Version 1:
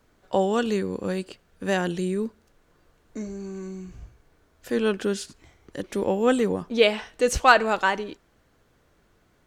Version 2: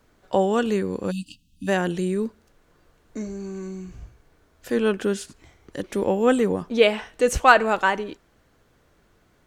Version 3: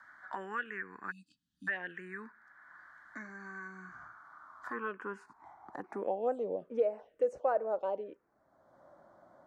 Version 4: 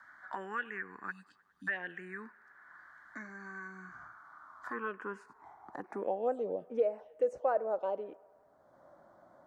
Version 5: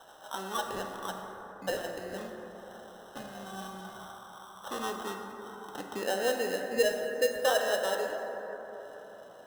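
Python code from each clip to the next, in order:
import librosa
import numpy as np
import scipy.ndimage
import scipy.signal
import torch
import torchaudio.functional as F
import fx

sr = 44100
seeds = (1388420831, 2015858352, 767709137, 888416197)

y1 = fx.spec_erase(x, sr, start_s=1.11, length_s=0.57, low_hz=310.0, high_hz=2500.0)
y1 = fx.dynamic_eq(y1, sr, hz=4600.0, q=1.4, threshold_db=-46.0, ratio=4.0, max_db=-6)
y1 = y1 * librosa.db_to_amplitude(2.0)
y2 = fx.filter_sweep_bandpass(y1, sr, from_hz=1700.0, to_hz=560.0, start_s=3.49, end_s=6.76, q=4.9)
y2 = fx.env_phaser(y2, sr, low_hz=450.0, high_hz=3400.0, full_db=-23.5)
y2 = fx.band_squash(y2, sr, depth_pct=70)
y3 = fx.echo_wet_bandpass(y2, sr, ms=102, feedback_pct=71, hz=1000.0, wet_db=-23)
y4 = fx.sample_hold(y3, sr, seeds[0], rate_hz=2300.0, jitter_pct=0)
y4 = fx.rev_plate(y4, sr, seeds[1], rt60_s=4.2, hf_ratio=0.3, predelay_ms=0, drr_db=2.0)
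y4 = y4 * librosa.db_to_amplitude(2.0)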